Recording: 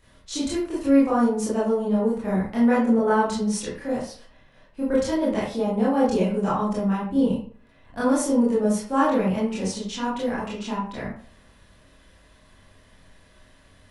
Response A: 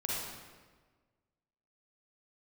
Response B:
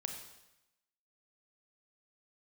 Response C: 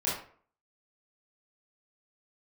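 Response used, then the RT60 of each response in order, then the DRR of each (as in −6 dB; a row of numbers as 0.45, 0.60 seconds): C; 1.4, 0.90, 0.50 seconds; −5.5, 4.0, −8.5 decibels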